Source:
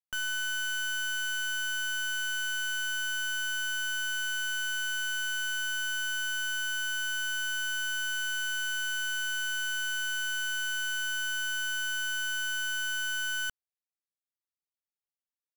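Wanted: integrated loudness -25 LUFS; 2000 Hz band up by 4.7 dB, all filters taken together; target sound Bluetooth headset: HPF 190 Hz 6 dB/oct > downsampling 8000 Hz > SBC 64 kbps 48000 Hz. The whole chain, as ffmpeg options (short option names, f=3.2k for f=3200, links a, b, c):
-af "highpass=f=190:p=1,equalizer=f=2k:t=o:g=8,aresample=8000,aresample=44100,volume=2dB" -ar 48000 -c:a sbc -b:a 64k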